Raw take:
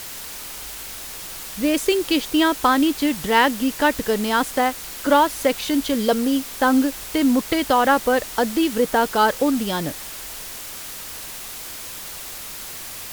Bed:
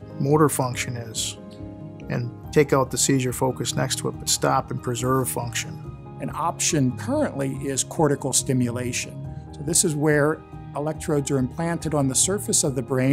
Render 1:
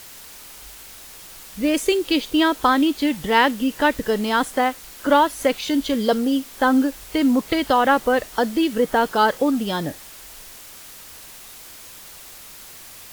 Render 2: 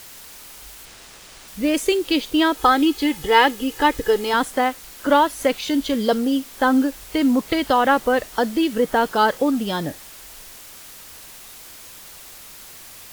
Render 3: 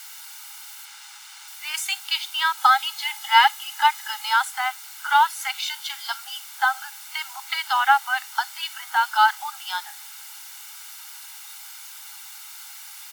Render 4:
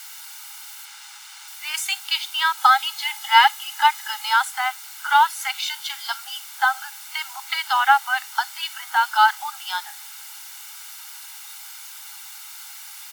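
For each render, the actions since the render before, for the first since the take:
noise reduction from a noise print 7 dB
0:00.85–0:01.48: windowed peak hold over 3 samples; 0:02.57–0:04.34: comb filter 2.4 ms
Chebyshev high-pass filter 800 Hz, order 8; comb filter 1.4 ms, depth 58%
level +1.5 dB

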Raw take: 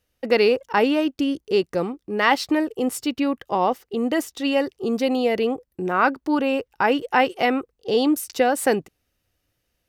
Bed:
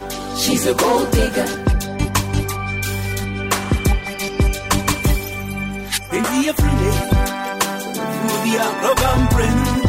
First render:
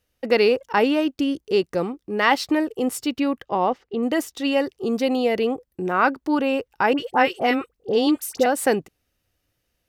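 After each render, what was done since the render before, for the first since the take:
0:03.45–0:04.03: high-frequency loss of the air 160 metres
0:06.93–0:08.46: all-pass dispersion highs, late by 55 ms, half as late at 1,300 Hz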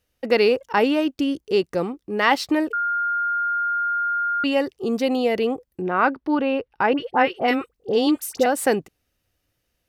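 0:02.73–0:04.44: beep over 1,410 Hz −20 dBFS
0:05.81–0:07.48: moving average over 6 samples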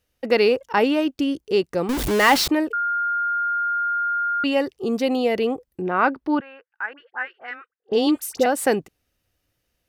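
0:01.89–0:02.48: converter with a step at zero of −18.5 dBFS
0:06.40–0:07.92: resonant band-pass 1,600 Hz, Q 4.9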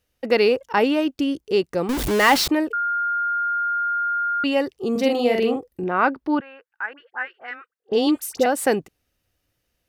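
0:04.91–0:05.84: double-tracking delay 45 ms −3 dB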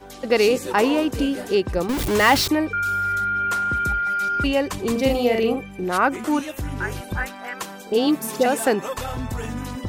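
mix in bed −13.5 dB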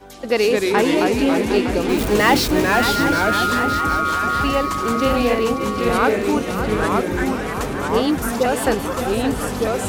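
on a send: feedback echo with a long and a short gap by turns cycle 762 ms, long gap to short 3 to 1, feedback 55%, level −9 dB
on the sum: delay with pitch and tempo change per echo 177 ms, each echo −2 semitones, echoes 2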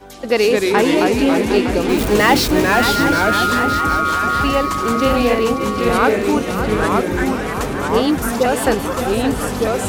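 level +2.5 dB
brickwall limiter −2 dBFS, peak gain reduction 2 dB

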